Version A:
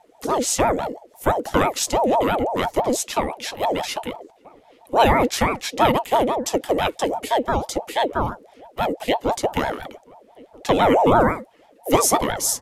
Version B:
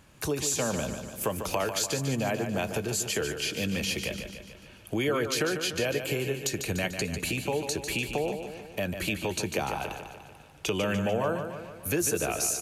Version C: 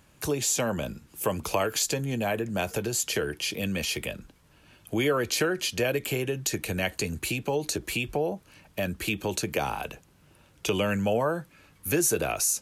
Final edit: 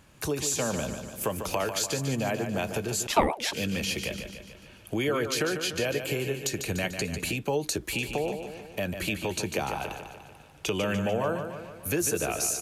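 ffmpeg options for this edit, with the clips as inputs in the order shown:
-filter_complex "[1:a]asplit=3[a][b][c];[a]atrim=end=3.072[d];[0:a]atrim=start=3.068:end=3.532[e];[b]atrim=start=3.528:end=7.372[f];[2:a]atrim=start=7.368:end=7.932[g];[c]atrim=start=7.928[h];[d][e]acrossfade=d=0.004:c1=hsin:c2=hsin[i];[i][f]acrossfade=d=0.004:c1=hsin:c2=hsin[j];[j][g]acrossfade=d=0.004:c1=hsin:c2=hsin[k];[k][h]acrossfade=d=0.004:c1=hsin:c2=hsin"

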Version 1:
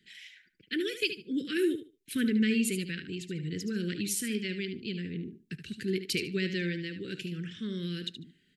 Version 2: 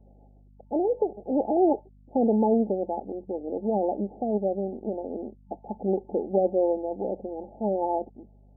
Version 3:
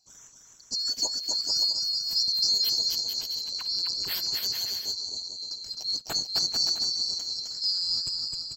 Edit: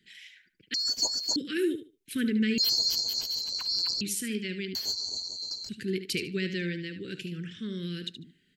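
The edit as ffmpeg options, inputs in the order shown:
-filter_complex "[2:a]asplit=3[a][b][c];[0:a]asplit=4[d][e][f][g];[d]atrim=end=0.742[h];[a]atrim=start=0.738:end=1.362[i];[e]atrim=start=1.358:end=2.582[j];[b]atrim=start=2.578:end=4.012[k];[f]atrim=start=4.008:end=4.752[l];[c]atrim=start=4.748:end=5.692[m];[g]atrim=start=5.688[n];[h][i]acrossfade=d=0.004:c1=hsin:c2=hsin[o];[o][j]acrossfade=d=0.004:c1=hsin:c2=hsin[p];[p][k]acrossfade=d=0.004:c1=hsin:c2=hsin[q];[q][l]acrossfade=d=0.004:c1=hsin:c2=hsin[r];[r][m]acrossfade=d=0.004:c1=hsin:c2=hsin[s];[s][n]acrossfade=d=0.004:c1=hsin:c2=hsin"

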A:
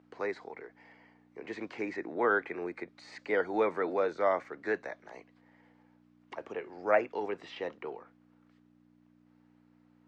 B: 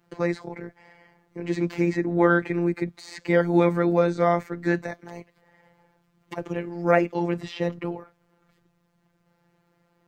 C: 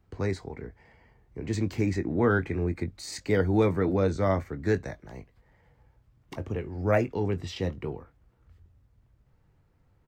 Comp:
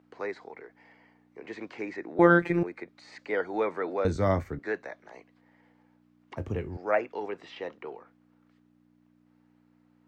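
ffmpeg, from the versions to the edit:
-filter_complex "[2:a]asplit=2[a][b];[0:a]asplit=4[c][d][e][f];[c]atrim=end=2.192[g];[1:a]atrim=start=2.188:end=2.632[h];[d]atrim=start=2.628:end=4.052[i];[a]atrim=start=4.048:end=4.592[j];[e]atrim=start=4.588:end=6.372[k];[b]atrim=start=6.368:end=6.772[l];[f]atrim=start=6.768[m];[g][h]acrossfade=d=0.004:c1=hsin:c2=hsin[n];[n][i]acrossfade=d=0.004:c1=hsin:c2=hsin[o];[o][j]acrossfade=d=0.004:c1=hsin:c2=hsin[p];[p][k]acrossfade=d=0.004:c1=hsin:c2=hsin[q];[q][l]acrossfade=d=0.004:c1=hsin:c2=hsin[r];[r][m]acrossfade=d=0.004:c1=hsin:c2=hsin"

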